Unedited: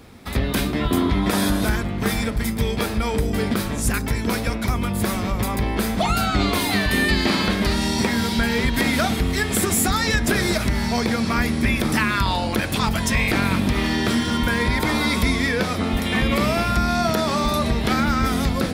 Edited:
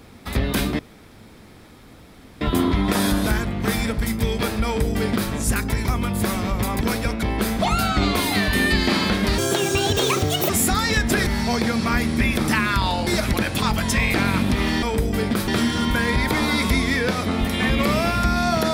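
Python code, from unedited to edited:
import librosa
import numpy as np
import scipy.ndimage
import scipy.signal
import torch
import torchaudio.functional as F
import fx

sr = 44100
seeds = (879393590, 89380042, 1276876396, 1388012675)

y = fx.edit(x, sr, fx.insert_room_tone(at_s=0.79, length_s=1.62),
    fx.duplicate(start_s=3.03, length_s=0.65, to_s=14.0),
    fx.move(start_s=4.23, length_s=0.42, to_s=5.61),
    fx.speed_span(start_s=7.76, length_s=1.91, speed=1.71),
    fx.move(start_s=10.44, length_s=0.27, to_s=12.51), tone=tone)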